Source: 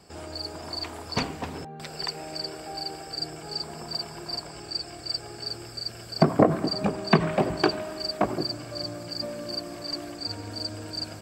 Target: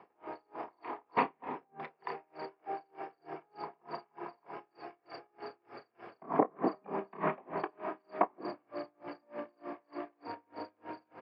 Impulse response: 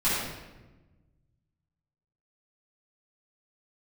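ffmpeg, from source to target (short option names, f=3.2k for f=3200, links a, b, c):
-filter_complex "[0:a]highpass=430,equalizer=f=600:t=q:w=4:g=-6,equalizer=f=990:t=q:w=4:g=4,equalizer=f=1.5k:t=q:w=4:g=-8,lowpass=f=2k:w=0.5412,lowpass=f=2k:w=1.3066,asplit=2[a][b];[b]adelay=31,volume=-9.5dB[c];[a][c]amix=inputs=2:normalize=0,asplit=2[d][e];[1:a]atrim=start_sample=2205[f];[e][f]afir=irnorm=-1:irlink=0,volume=-26.5dB[g];[d][g]amix=inputs=2:normalize=0,aeval=exprs='val(0)*pow(10,-36*(0.5-0.5*cos(2*PI*3.3*n/s))/20)':c=same,volume=4.5dB"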